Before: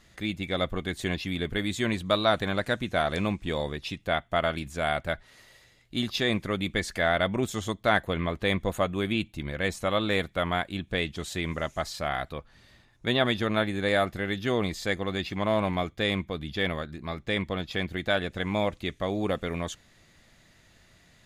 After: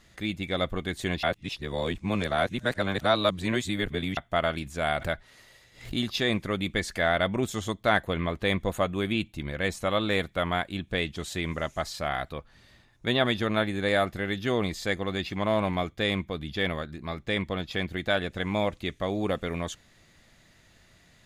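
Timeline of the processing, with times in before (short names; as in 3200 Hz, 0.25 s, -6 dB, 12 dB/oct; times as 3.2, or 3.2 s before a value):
1.23–4.17 reverse
4.81–5.99 backwards sustainer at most 130 dB/s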